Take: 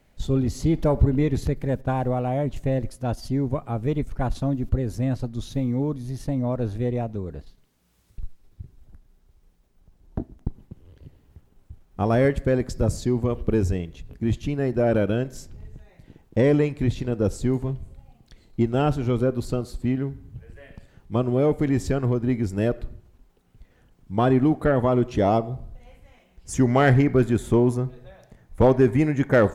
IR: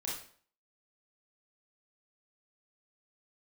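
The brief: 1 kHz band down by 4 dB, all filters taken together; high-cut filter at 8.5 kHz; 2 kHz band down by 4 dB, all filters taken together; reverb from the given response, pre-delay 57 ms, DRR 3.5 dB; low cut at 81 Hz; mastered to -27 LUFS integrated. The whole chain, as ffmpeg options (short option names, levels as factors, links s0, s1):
-filter_complex "[0:a]highpass=81,lowpass=8500,equalizer=f=1000:t=o:g=-5.5,equalizer=f=2000:t=o:g=-3,asplit=2[s0][s1];[1:a]atrim=start_sample=2205,adelay=57[s2];[s1][s2]afir=irnorm=-1:irlink=0,volume=0.562[s3];[s0][s3]amix=inputs=2:normalize=0,volume=0.631"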